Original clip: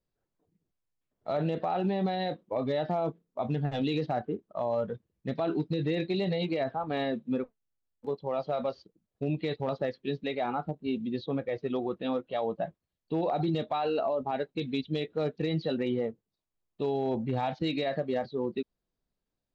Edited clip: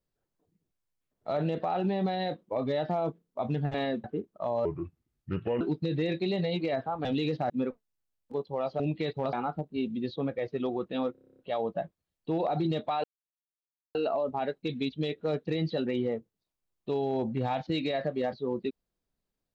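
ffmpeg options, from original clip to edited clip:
-filter_complex "[0:a]asplit=19[s0][s1][s2][s3][s4][s5][s6][s7][s8][s9][s10][s11][s12][s13][s14][s15][s16][s17][s18];[s0]atrim=end=3.742[s19];[s1]atrim=start=6.928:end=7.232[s20];[s2]atrim=start=4.188:end=4.804[s21];[s3]atrim=start=4.8:end=5.49,asetpts=PTS-STARTPTS,asetrate=31752,aresample=44100,atrim=end_sample=42262,asetpts=PTS-STARTPTS[s22];[s4]atrim=start=5.486:end=6.932[s23];[s5]atrim=start=3.738:end=4.192[s24];[s6]atrim=start=7.228:end=8.532[s25];[s7]atrim=start=9.228:end=9.762[s26];[s8]atrim=start=10.428:end=12.252[s27];[s9]atrim=start=12.218:end=12.252[s28];[s10]atrim=start=12.218:end=12.252[s29];[s11]atrim=start=12.218:end=12.252[s30];[s12]atrim=start=12.218:end=12.252[s31];[s13]atrim=start=12.218:end=12.252[s32];[s14]atrim=start=12.218:end=12.252[s33];[s15]atrim=start=12.218:end=12.252[s34];[s16]atrim=start=12.218:end=12.252[s35];[s17]atrim=start=12.218:end=13.87,asetpts=PTS-STARTPTS,afade=t=out:st=1.648:d=0.004:c=hsin,apad=pad_dur=0.91[s36];[s18]atrim=start=13.87,asetpts=PTS-STARTPTS,afade=t=in:d=0.004:c=hsin[s37];[s19][s20]acrossfade=d=0.004:c1=hsin:c2=hsin[s38];[s38][s21]acrossfade=d=0.004:c1=hsin:c2=hsin[s39];[s39][s22]acrossfade=d=0.004:c1=hsin:c2=hsin[s40];[s40][s23]acrossfade=d=0.004:c1=hsin:c2=hsin[s41];[s41][s24]acrossfade=d=0.004:c1=hsin:c2=hsin[s42];[s42][s25]acrossfade=d=0.004:c1=hsin:c2=hsin[s43];[s43][s26]acrossfade=d=0.004:c1=hsin:c2=hsin[s44];[s44][s27]acrossfade=d=0.004:c1=hsin:c2=hsin[s45];[s45][s28]acrossfade=d=0.004:c1=hsin:c2=hsin[s46];[s46][s29]acrossfade=d=0.004:c1=hsin:c2=hsin[s47];[s47][s30]acrossfade=d=0.004:c1=hsin:c2=hsin[s48];[s48][s31]acrossfade=d=0.004:c1=hsin:c2=hsin[s49];[s49][s32]acrossfade=d=0.004:c1=hsin:c2=hsin[s50];[s50][s33]acrossfade=d=0.004:c1=hsin:c2=hsin[s51];[s51][s34]acrossfade=d=0.004:c1=hsin:c2=hsin[s52];[s52][s35]acrossfade=d=0.004:c1=hsin:c2=hsin[s53];[s36][s37]concat=n=2:v=0:a=1[s54];[s53][s54]acrossfade=d=0.004:c1=hsin:c2=hsin"

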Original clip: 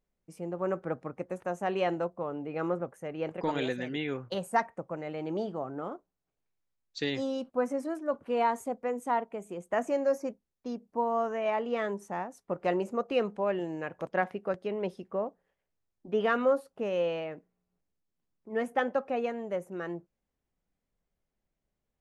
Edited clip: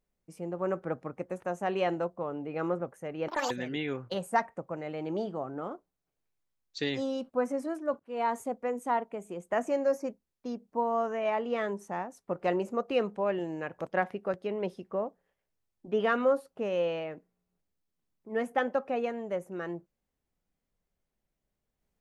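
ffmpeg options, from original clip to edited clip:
-filter_complex "[0:a]asplit=4[s0][s1][s2][s3];[s0]atrim=end=3.284[s4];[s1]atrim=start=3.28:end=3.71,asetpts=PTS-STARTPTS,asetrate=83790,aresample=44100[s5];[s2]atrim=start=3.706:end=8.2,asetpts=PTS-STARTPTS,afade=t=out:st=4.49:d=0.004:c=hsin[s6];[s3]atrim=start=8.2,asetpts=PTS-STARTPTS,afade=t=in:d=0.34[s7];[s4][s5]acrossfade=d=0.004:c1=hsin:c2=hsin[s8];[s6][s7]concat=n=2:v=0:a=1[s9];[s8][s9]acrossfade=d=0.004:c1=hsin:c2=hsin"

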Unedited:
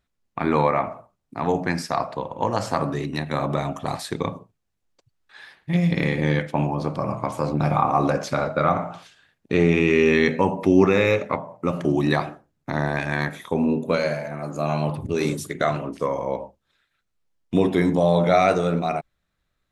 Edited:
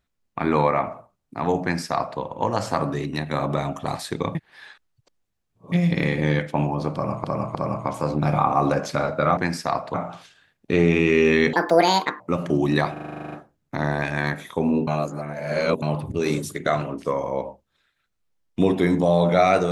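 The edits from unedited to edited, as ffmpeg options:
-filter_complex "[0:a]asplit=21[s0][s1][s2][s3][s4][s5][s6][s7][s8][s9][s10][s11][s12][s13][s14][s15][s16][s17][s18][s19][s20];[s0]atrim=end=4.352[s21];[s1]atrim=start=4.348:end=5.722,asetpts=PTS-STARTPTS,areverse[s22];[s2]atrim=start=5.718:end=7.242[s23];[s3]atrim=start=6.928:end=7.242[s24];[s4]atrim=start=6.928:end=8.752[s25];[s5]atrim=start=1.618:end=2.192[s26];[s6]atrim=start=8.748:end=10.344[s27];[s7]atrim=start=10.34:end=11.55,asetpts=PTS-STARTPTS,asetrate=79380,aresample=44100[s28];[s8]atrim=start=11.546:end=12.312[s29];[s9]atrim=start=12.268:end=12.312[s30];[s10]atrim=start=12.268:end=12.312[s31];[s11]atrim=start=12.268:end=12.312[s32];[s12]atrim=start=12.268:end=12.312[s33];[s13]atrim=start=12.268:end=12.312[s34];[s14]atrim=start=12.268:end=12.312[s35];[s15]atrim=start=12.268:end=12.312[s36];[s16]atrim=start=12.268:end=12.312[s37];[s17]atrim=start=12.268:end=12.312[s38];[s18]atrim=start=12.268:end=13.822[s39];[s19]atrim=start=13.818:end=14.772,asetpts=PTS-STARTPTS,areverse[s40];[s20]atrim=start=14.768[s41];[s21][s22]acrossfade=d=0.004:c1=hsin:c2=hsin[s42];[s42][s23]acrossfade=d=0.004:c1=hsin:c2=hsin[s43];[s43][s24]acrossfade=d=0.004:c1=hsin:c2=hsin[s44];[s44][s25]acrossfade=d=0.004:c1=hsin:c2=hsin[s45];[s45][s26]acrossfade=d=0.004:c1=hsin:c2=hsin[s46];[s46][s27]acrossfade=d=0.004:c1=hsin:c2=hsin[s47];[s47][s28]acrossfade=d=0.004:c1=hsin:c2=hsin[s48];[s48][s29]acrossfade=d=0.004:c1=hsin:c2=hsin[s49];[s49][s30]acrossfade=d=0.004:c1=hsin:c2=hsin[s50];[s50][s31]acrossfade=d=0.004:c1=hsin:c2=hsin[s51];[s51][s32]acrossfade=d=0.004:c1=hsin:c2=hsin[s52];[s52][s33]acrossfade=d=0.004:c1=hsin:c2=hsin[s53];[s53][s34]acrossfade=d=0.004:c1=hsin:c2=hsin[s54];[s54][s35]acrossfade=d=0.004:c1=hsin:c2=hsin[s55];[s55][s36]acrossfade=d=0.004:c1=hsin:c2=hsin[s56];[s56][s37]acrossfade=d=0.004:c1=hsin:c2=hsin[s57];[s57][s38]acrossfade=d=0.004:c1=hsin:c2=hsin[s58];[s58][s39]acrossfade=d=0.004:c1=hsin:c2=hsin[s59];[s59][s40]acrossfade=d=0.004:c1=hsin:c2=hsin[s60];[s60][s41]acrossfade=d=0.004:c1=hsin:c2=hsin"

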